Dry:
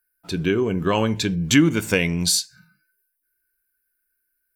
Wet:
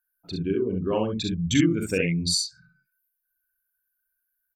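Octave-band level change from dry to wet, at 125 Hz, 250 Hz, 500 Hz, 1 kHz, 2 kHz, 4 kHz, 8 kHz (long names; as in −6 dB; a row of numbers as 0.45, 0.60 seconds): −4.0, −4.0, −3.5, −8.5, −8.0, −4.0, −6.5 decibels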